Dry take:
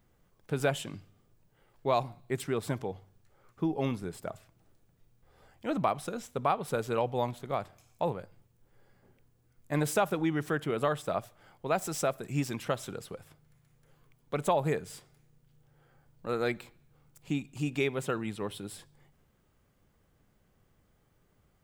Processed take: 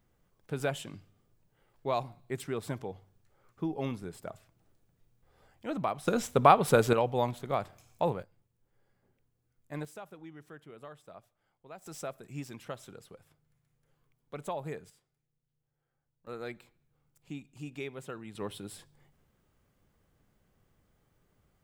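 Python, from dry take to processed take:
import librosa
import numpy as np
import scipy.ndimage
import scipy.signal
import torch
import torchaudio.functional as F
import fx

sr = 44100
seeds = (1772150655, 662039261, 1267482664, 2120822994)

y = fx.gain(x, sr, db=fx.steps((0.0, -3.5), (6.07, 8.5), (6.93, 1.5), (8.23, -9.5), (9.85, -19.0), (11.86, -9.5), (14.9, -19.5), (16.27, -10.0), (18.35, -2.0)))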